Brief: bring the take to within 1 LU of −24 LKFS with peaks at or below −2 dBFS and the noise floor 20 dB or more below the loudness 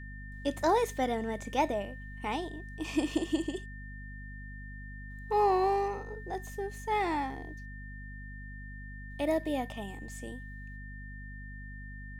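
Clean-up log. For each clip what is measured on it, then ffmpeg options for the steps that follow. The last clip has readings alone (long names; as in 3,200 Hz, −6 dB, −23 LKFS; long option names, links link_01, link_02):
mains hum 50 Hz; hum harmonics up to 250 Hz; level of the hum −42 dBFS; interfering tone 1,800 Hz; level of the tone −48 dBFS; integrated loudness −32.5 LKFS; sample peak −16.0 dBFS; target loudness −24.0 LKFS
→ -af "bandreject=frequency=50:width_type=h:width=4,bandreject=frequency=100:width_type=h:width=4,bandreject=frequency=150:width_type=h:width=4,bandreject=frequency=200:width_type=h:width=4,bandreject=frequency=250:width_type=h:width=4"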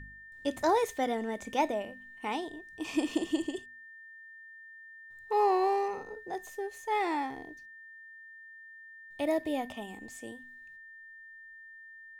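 mains hum none found; interfering tone 1,800 Hz; level of the tone −48 dBFS
→ -af "bandreject=frequency=1800:width=30"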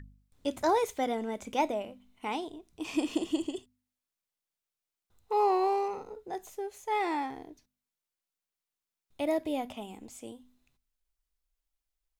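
interfering tone none found; integrated loudness −32.5 LKFS; sample peak −16.0 dBFS; target loudness −24.0 LKFS
→ -af "volume=8.5dB"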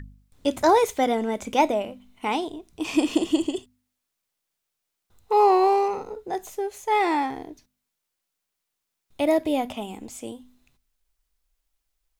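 integrated loudness −24.0 LKFS; sample peak −7.5 dBFS; background noise floor −82 dBFS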